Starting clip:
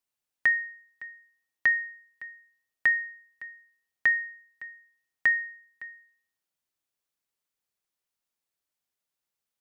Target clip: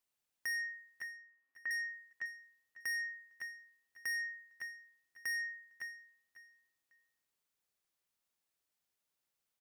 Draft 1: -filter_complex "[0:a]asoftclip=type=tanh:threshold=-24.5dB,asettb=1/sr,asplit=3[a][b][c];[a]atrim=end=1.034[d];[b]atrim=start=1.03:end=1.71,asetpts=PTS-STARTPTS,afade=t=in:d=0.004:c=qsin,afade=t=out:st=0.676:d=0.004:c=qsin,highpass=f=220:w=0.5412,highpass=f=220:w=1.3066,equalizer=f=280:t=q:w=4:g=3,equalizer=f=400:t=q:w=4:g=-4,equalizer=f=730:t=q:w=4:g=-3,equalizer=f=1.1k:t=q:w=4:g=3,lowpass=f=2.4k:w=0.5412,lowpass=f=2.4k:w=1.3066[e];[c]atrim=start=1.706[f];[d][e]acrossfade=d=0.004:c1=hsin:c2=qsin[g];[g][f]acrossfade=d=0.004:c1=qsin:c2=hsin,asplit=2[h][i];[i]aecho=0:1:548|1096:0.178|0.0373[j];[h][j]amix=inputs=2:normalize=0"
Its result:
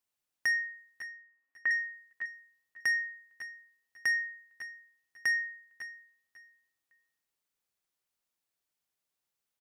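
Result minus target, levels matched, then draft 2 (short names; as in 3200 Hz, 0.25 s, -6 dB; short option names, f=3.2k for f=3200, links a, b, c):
soft clip: distortion -7 dB
-filter_complex "[0:a]asoftclip=type=tanh:threshold=-35.5dB,asettb=1/sr,asplit=3[a][b][c];[a]atrim=end=1.034[d];[b]atrim=start=1.03:end=1.71,asetpts=PTS-STARTPTS,afade=t=in:d=0.004:c=qsin,afade=t=out:st=0.676:d=0.004:c=qsin,highpass=f=220:w=0.5412,highpass=f=220:w=1.3066,equalizer=f=280:t=q:w=4:g=3,equalizer=f=400:t=q:w=4:g=-4,equalizer=f=730:t=q:w=4:g=-3,equalizer=f=1.1k:t=q:w=4:g=3,lowpass=f=2.4k:w=0.5412,lowpass=f=2.4k:w=1.3066[e];[c]atrim=start=1.706[f];[d][e]acrossfade=d=0.004:c1=hsin:c2=qsin[g];[g][f]acrossfade=d=0.004:c1=qsin:c2=hsin,asplit=2[h][i];[i]aecho=0:1:548|1096:0.178|0.0373[j];[h][j]amix=inputs=2:normalize=0"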